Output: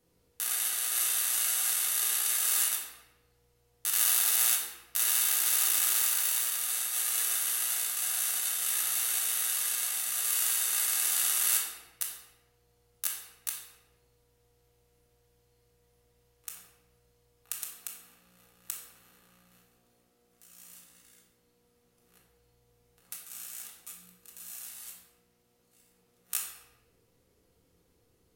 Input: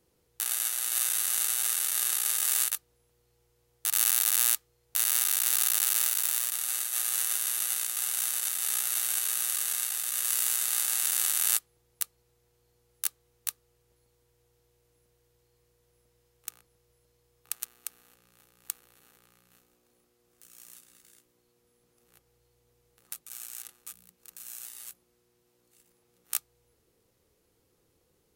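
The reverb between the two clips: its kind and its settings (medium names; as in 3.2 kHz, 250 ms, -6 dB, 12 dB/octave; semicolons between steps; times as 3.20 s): simulated room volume 540 m³, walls mixed, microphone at 1.8 m; trim -3.5 dB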